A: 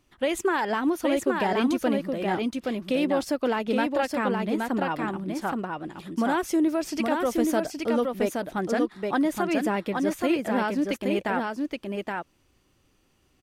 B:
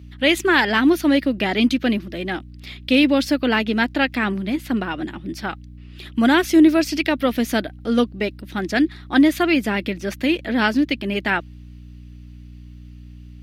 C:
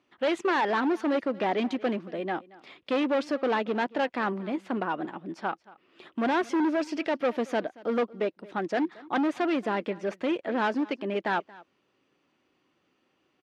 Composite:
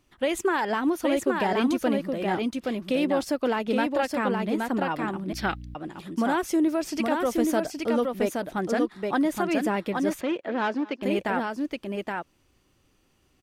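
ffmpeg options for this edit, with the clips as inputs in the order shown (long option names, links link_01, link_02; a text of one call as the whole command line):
ffmpeg -i take0.wav -i take1.wav -i take2.wav -filter_complex "[0:a]asplit=3[link_01][link_02][link_03];[link_01]atrim=end=5.332[link_04];[1:a]atrim=start=5.328:end=5.752[link_05];[link_02]atrim=start=5.748:end=10.212[link_06];[2:a]atrim=start=10.208:end=11.022[link_07];[link_03]atrim=start=11.018[link_08];[link_04][link_05]acrossfade=duration=0.004:curve1=hsin:curve2=hsin[link_09];[link_09][link_06]acrossfade=duration=0.004:curve1=hsin:curve2=hsin[link_10];[link_10][link_07]acrossfade=duration=0.004:curve1=hsin:curve2=hsin[link_11];[link_11][link_08]acrossfade=duration=0.004:curve1=hsin:curve2=hsin" out.wav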